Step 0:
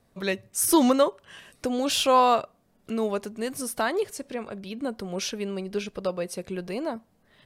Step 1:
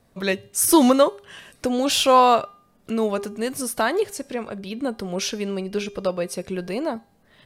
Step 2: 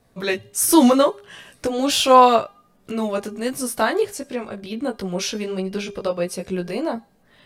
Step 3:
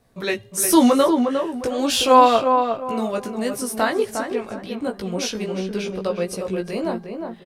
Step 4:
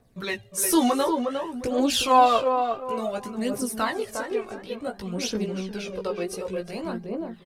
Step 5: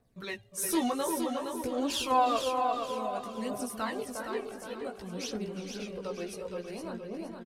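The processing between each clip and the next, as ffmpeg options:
ffmpeg -i in.wav -af "bandreject=frequency=403:width_type=h:width=4,bandreject=frequency=806:width_type=h:width=4,bandreject=frequency=1209:width_type=h:width=4,bandreject=frequency=1612:width_type=h:width=4,bandreject=frequency=2015:width_type=h:width=4,bandreject=frequency=2418:width_type=h:width=4,bandreject=frequency=2821:width_type=h:width=4,bandreject=frequency=3224:width_type=h:width=4,bandreject=frequency=3627:width_type=h:width=4,bandreject=frequency=4030:width_type=h:width=4,bandreject=frequency=4433:width_type=h:width=4,bandreject=frequency=4836:width_type=h:width=4,bandreject=frequency=5239:width_type=h:width=4,bandreject=frequency=5642:width_type=h:width=4,bandreject=frequency=6045:width_type=h:width=4,bandreject=frequency=6448:width_type=h:width=4,bandreject=frequency=6851:width_type=h:width=4,bandreject=frequency=7254:width_type=h:width=4,bandreject=frequency=7657:width_type=h:width=4,bandreject=frequency=8060:width_type=h:width=4,bandreject=frequency=8463:width_type=h:width=4,bandreject=frequency=8866:width_type=h:width=4,bandreject=frequency=9269:width_type=h:width=4,bandreject=frequency=9672:width_type=h:width=4,bandreject=frequency=10075:width_type=h:width=4,bandreject=frequency=10478:width_type=h:width=4,bandreject=frequency=10881:width_type=h:width=4,bandreject=frequency=11284:width_type=h:width=4,bandreject=frequency=11687:width_type=h:width=4,bandreject=frequency=12090:width_type=h:width=4,bandreject=frequency=12493:width_type=h:width=4,bandreject=frequency=12896:width_type=h:width=4,bandreject=frequency=13299:width_type=h:width=4,bandreject=frequency=13702:width_type=h:width=4,bandreject=frequency=14105:width_type=h:width=4,bandreject=frequency=14508:width_type=h:width=4,bandreject=frequency=14911:width_type=h:width=4,bandreject=frequency=15314:width_type=h:width=4,volume=4.5dB" out.wav
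ffmpeg -i in.wav -af "flanger=delay=15.5:depth=3.2:speed=1.4,volume=4dB" out.wav
ffmpeg -i in.wav -filter_complex "[0:a]asplit=2[link_01][link_02];[link_02]adelay=357,lowpass=frequency=1600:poles=1,volume=-5dB,asplit=2[link_03][link_04];[link_04]adelay=357,lowpass=frequency=1600:poles=1,volume=0.32,asplit=2[link_05][link_06];[link_06]adelay=357,lowpass=frequency=1600:poles=1,volume=0.32,asplit=2[link_07][link_08];[link_08]adelay=357,lowpass=frequency=1600:poles=1,volume=0.32[link_09];[link_01][link_03][link_05][link_07][link_09]amix=inputs=5:normalize=0,volume=-1dB" out.wav
ffmpeg -i in.wav -af "aphaser=in_gain=1:out_gain=1:delay=2.8:decay=0.55:speed=0.56:type=triangular,volume=-5.5dB" out.wav
ffmpeg -i in.wav -af "aecho=1:1:466|932|1398|1864:0.501|0.175|0.0614|0.0215,volume=-8.5dB" out.wav

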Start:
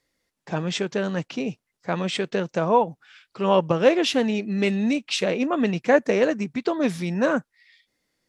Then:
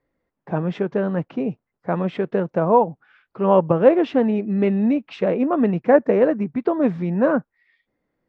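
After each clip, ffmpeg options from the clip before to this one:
ffmpeg -i in.wav -af "lowpass=1200,volume=4dB" out.wav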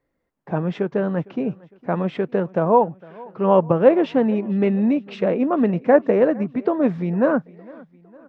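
ffmpeg -i in.wav -af "aecho=1:1:457|914|1371:0.0708|0.0361|0.0184" out.wav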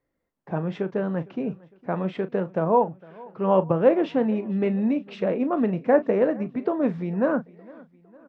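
ffmpeg -i in.wav -filter_complex "[0:a]asplit=2[link_01][link_02];[link_02]adelay=37,volume=-13.5dB[link_03];[link_01][link_03]amix=inputs=2:normalize=0,volume=-4.5dB" out.wav

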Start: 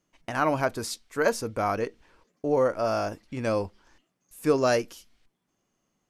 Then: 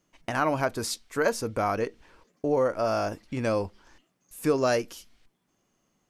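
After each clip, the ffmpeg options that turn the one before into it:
ffmpeg -i in.wav -af "acompressor=threshold=-32dB:ratio=1.5,volume=3.5dB" out.wav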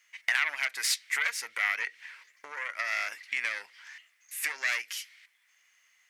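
ffmpeg -i in.wav -af "aeval=exprs='0.316*(cos(1*acos(clip(val(0)/0.316,-1,1)))-cos(1*PI/2))+0.141*(cos(4*acos(clip(val(0)/0.316,-1,1)))-cos(4*PI/2))+0.0708*(cos(5*acos(clip(val(0)/0.316,-1,1)))-cos(5*PI/2))':channel_layout=same,acompressor=threshold=-23dB:ratio=12,highpass=frequency=2000:width_type=q:width=4.9" out.wav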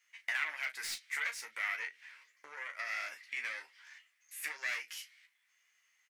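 ffmpeg -i in.wav -filter_complex "[0:a]acrossover=split=340|2700[link_01][link_02][link_03];[link_03]asoftclip=type=tanh:threshold=-30.5dB[link_04];[link_01][link_02][link_04]amix=inputs=3:normalize=0,aecho=1:1:13|36:0.562|0.299,volume=-8.5dB" out.wav

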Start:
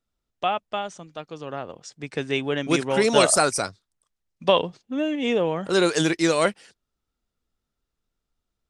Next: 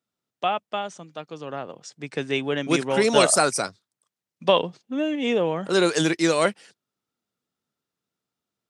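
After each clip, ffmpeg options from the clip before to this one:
ffmpeg -i in.wav -af "highpass=frequency=120:width=0.5412,highpass=frequency=120:width=1.3066" out.wav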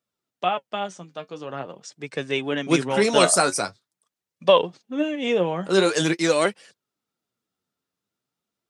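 ffmpeg -i in.wav -af "flanger=delay=1.7:depth=9.7:regen=48:speed=0.45:shape=sinusoidal,volume=4.5dB" out.wav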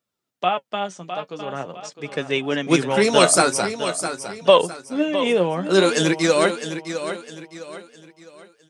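ffmpeg -i in.wav -af "aecho=1:1:658|1316|1974|2632:0.316|0.114|0.041|0.0148,volume=2.5dB" out.wav

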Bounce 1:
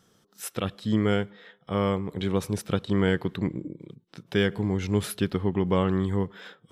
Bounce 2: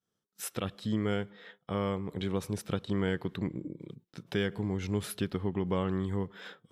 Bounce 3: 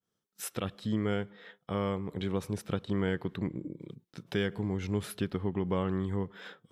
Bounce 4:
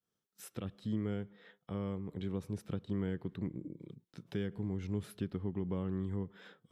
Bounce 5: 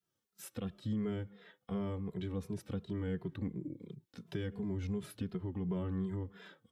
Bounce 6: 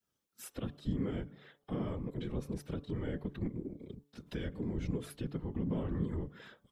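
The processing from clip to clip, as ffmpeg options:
ffmpeg -i in.wav -af "agate=range=-33dB:threshold=-49dB:ratio=3:detection=peak,acompressor=threshold=-39dB:ratio=1.5" out.wav
ffmpeg -i in.wav -af "adynamicequalizer=threshold=0.00224:dfrequency=3100:dqfactor=0.7:tfrequency=3100:tqfactor=0.7:attack=5:release=100:ratio=0.375:range=2:mode=cutabove:tftype=highshelf" out.wav
ffmpeg -i in.wav -filter_complex "[0:a]acrossover=split=390[link_01][link_02];[link_02]acompressor=threshold=-59dB:ratio=1.5[link_03];[link_01][link_03]amix=inputs=2:normalize=0,volume=-4dB" out.wav
ffmpeg -i in.wav -filter_complex "[0:a]alimiter=level_in=5dB:limit=-24dB:level=0:latency=1:release=42,volume=-5dB,asplit=2[link_01][link_02];[link_02]adelay=2.5,afreqshift=-2.8[link_03];[link_01][link_03]amix=inputs=2:normalize=1,volume=4.5dB" out.wav
ffmpeg -i in.wav -af "afftfilt=real='hypot(re,im)*cos(2*PI*random(0))':imag='hypot(re,im)*sin(2*PI*random(1))':win_size=512:overlap=0.75,bandreject=frequency=143.7:width_type=h:width=4,bandreject=frequency=287.4:width_type=h:width=4,bandreject=frequency=431.1:width_type=h:width=4,bandreject=frequency=574.8:width_type=h:width=4,bandreject=frequency=718.5:width_type=h:width=4,bandreject=frequency=862.2:width_type=h:width=4,bandreject=frequency=1005.9:width_type=h:width=4,bandreject=frequency=1149.6:width_type=h:width=4,volume=7dB" out.wav

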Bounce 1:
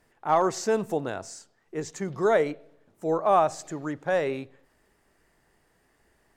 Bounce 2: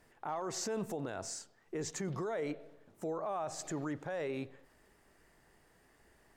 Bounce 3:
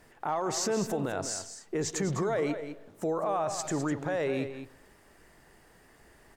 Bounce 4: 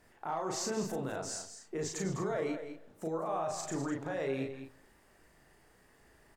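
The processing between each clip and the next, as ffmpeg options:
ffmpeg -i in.wav -af "acompressor=threshold=-29dB:ratio=3,alimiter=level_in=5.5dB:limit=-24dB:level=0:latency=1:release=18,volume=-5.5dB" out.wav
ffmpeg -i in.wav -af "aecho=1:1:204:0.316,volume=7.5dB" out.wav
ffmpeg -i in.wav -filter_complex "[0:a]asplit=2[link_01][link_02];[link_02]adelay=37,volume=-3dB[link_03];[link_01][link_03]amix=inputs=2:normalize=0,volume=-7dB" out.wav

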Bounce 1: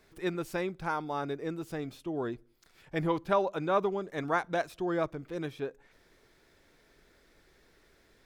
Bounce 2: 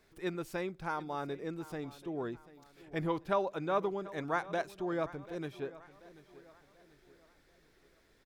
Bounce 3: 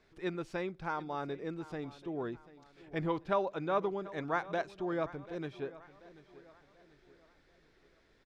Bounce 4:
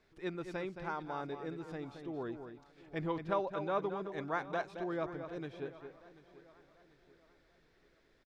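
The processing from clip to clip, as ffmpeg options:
ffmpeg -i in.wav -af "aecho=1:1:738|1476|2214|2952:0.126|0.0541|0.0233|0.01,volume=-4dB" out.wav
ffmpeg -i in.wav -af "lowpass=5300" out.wav
ffmpeg -i in.wav -filter_complex "[0:a]asplit=2[link_01][link_02];[link_02]adelay=221.6,volume=-8dB,highshelf=frequency=4000:gain=-4.99[link_03];[link_01][link_03]amix=inputs=2:normalize=0,volume=-3dB" out.wav

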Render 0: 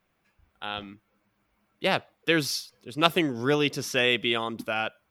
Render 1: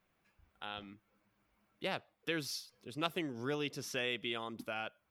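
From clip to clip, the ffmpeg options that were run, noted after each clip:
ffmpeg -i in.wav -af "acompressor=threshold=-45dB:ratio=1.5,volume=-4.5dB" out.wav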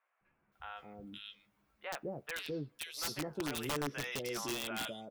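ffmpeg -i in.wav -filter_complex "[0:a]asplit=2[link_01][link_02];[link_02]adelay=14,volume=-8dB[link_03];[link_01][link_03]amix=inputs=2:normalize=0,acrossover=split=630|2400[link_04][link_05][link_06];[link_04]adelay=210[link_07];[link_06]adelay=520[link_08];[link_07][link_05][link_08]amix=inputs=3:normalize=0,aeval=exprs='(mod(33.5*val(0)+1,2)-1)/33.5':channel_layout=same,volume=1dB" out.wav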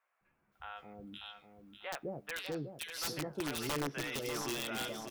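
ffmpeg -i in.wav -af "aecho=1:1:594|1188|1782|2376:0.398|0.123|0.0383|0.0119" out.wav

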